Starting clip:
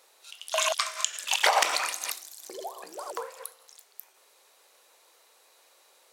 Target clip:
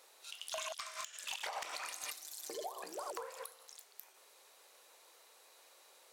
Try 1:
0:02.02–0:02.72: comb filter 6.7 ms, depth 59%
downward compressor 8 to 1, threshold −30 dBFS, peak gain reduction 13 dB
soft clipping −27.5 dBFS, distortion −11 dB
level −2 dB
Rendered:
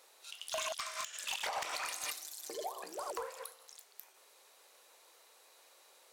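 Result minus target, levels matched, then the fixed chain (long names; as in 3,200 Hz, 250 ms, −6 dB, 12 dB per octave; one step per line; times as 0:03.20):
downward compressor: peak gain reduction −5 dB
0:02.02–0:02.72: comb filter 6.7 ms, depth 59%
downward compressor 8 to 1, threshold −36 dBFS, peak gain reduction 18 dB
soft clipping −27.5 dBFS, distortion −15 dB
level −2 dB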